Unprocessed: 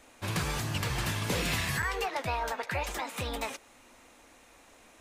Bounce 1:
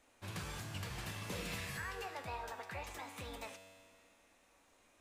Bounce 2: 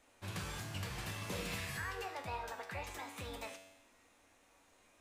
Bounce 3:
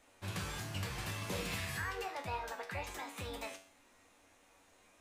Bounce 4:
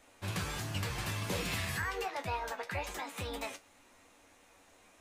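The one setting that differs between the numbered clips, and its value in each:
resonator, decay: 2.1, 0.98, 0.46, 0.15 s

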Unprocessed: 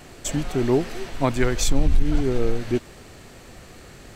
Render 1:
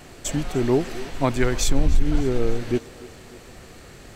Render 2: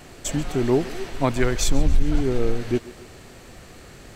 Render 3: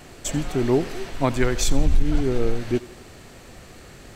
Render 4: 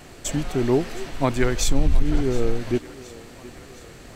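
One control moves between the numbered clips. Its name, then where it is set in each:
thinning echo, time: 298, 138, 86, 716 ms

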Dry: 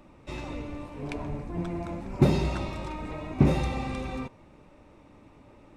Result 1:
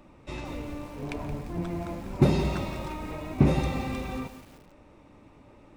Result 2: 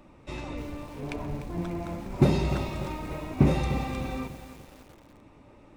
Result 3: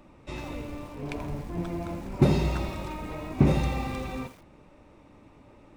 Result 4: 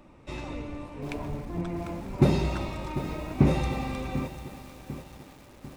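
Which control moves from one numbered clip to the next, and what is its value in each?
lo-fi delay, time: 173, 297, 83, 746 ms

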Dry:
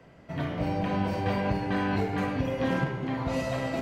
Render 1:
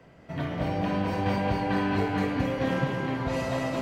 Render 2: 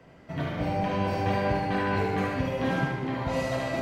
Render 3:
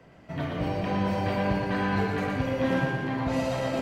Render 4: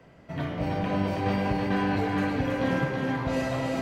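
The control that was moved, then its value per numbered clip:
thinning echo, time: 218, 74, 118, 324 ms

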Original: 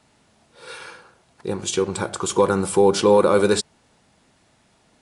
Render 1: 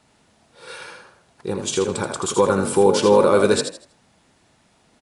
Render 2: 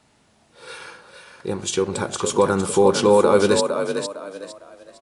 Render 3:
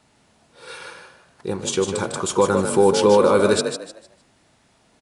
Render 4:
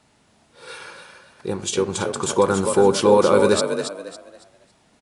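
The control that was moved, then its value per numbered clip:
frequency-shifting echo, time: 80, 457, 152, 277 ms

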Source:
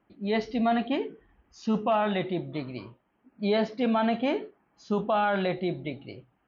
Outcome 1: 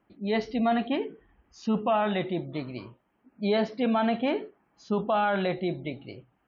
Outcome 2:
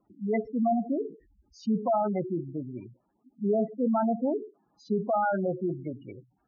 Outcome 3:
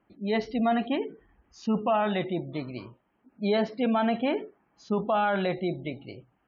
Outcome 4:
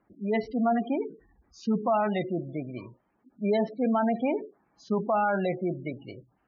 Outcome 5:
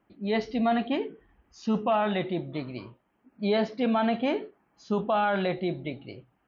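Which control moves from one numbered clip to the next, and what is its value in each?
spectral gate, under each frame's peak: -45, -10, -35, -20, -60 dB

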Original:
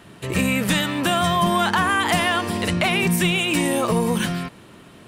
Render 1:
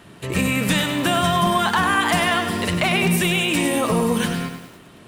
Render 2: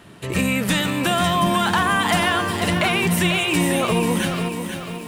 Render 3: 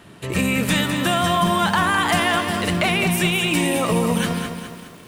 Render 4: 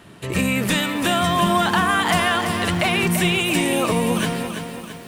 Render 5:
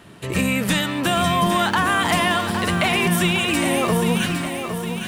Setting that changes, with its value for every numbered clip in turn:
lo-fi delay, time: 99, 492, 207, 335, 810 ms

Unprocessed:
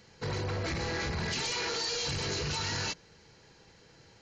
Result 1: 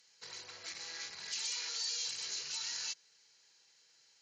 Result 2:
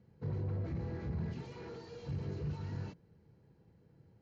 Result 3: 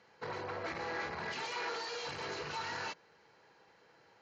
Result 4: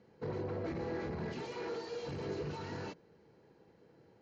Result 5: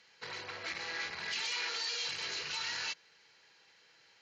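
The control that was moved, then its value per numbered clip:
band-pass, frequency: 7800, 130, 1000, 340, 2600 Hz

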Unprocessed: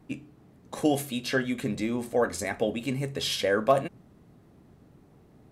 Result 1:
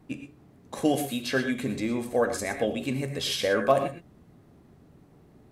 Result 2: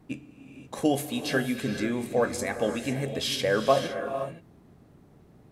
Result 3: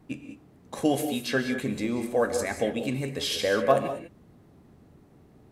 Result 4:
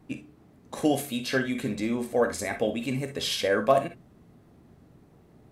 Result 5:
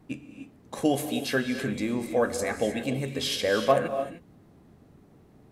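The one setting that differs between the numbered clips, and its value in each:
non-linear reverb, gate: 140, 540, 220, 80, 330 ms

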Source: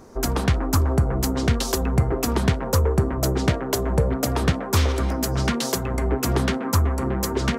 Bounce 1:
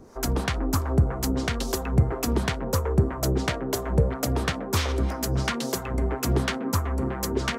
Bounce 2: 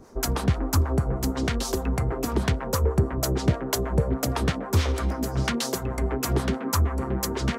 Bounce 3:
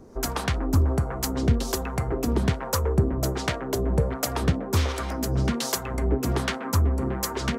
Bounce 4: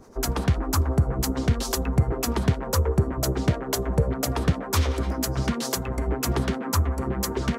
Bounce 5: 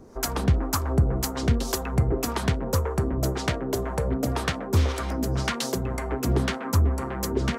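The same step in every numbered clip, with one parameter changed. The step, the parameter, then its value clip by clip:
harmonic tremolo, rate: 3, 6.3, 1.3, 10, 1.9 Hz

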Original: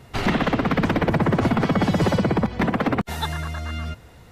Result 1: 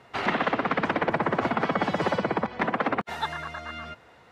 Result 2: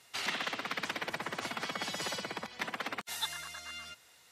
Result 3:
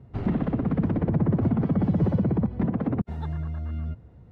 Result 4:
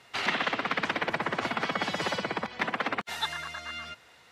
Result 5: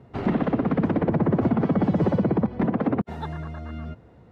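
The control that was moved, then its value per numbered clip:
band-pass, frequency: 1200, 7800, 110, 3000, 270 Hz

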